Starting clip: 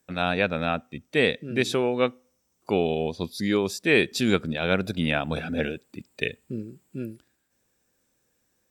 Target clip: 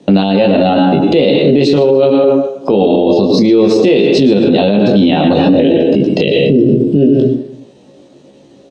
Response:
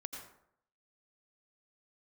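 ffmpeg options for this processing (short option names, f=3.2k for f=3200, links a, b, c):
-filter_complex "[0:a]asplit=2[a][b];[b]adelay=16,volume=-8dB[c];[a][c]amix=inputs=2:normalize=0,asplit=2[d][e];[1:a]atrim=start_sample=2205,adelay=22[f];[e][f]afir=irnorm=-1:irlink=0,volume=0.5dB[g];[d][g]amix=inputs=2:normalize=0,acompressor=threshold=-28dB:ratio=8,firequalizer=gain_entry='entry(370,0);entry(1500,-21);entry(3000,-2)':delay=0.05:min_phase=1,aecho=1:1:277:0.0631,asetrate=48091,aresample=44100,atempo=0.917004,highpass=170,lowpass=3.8k,aemphasis=mode=reproduction:type=50fm,alimiter=level_in=35dB:limit=-1dB:release=50:level=0:latency=1,volume=-1dB"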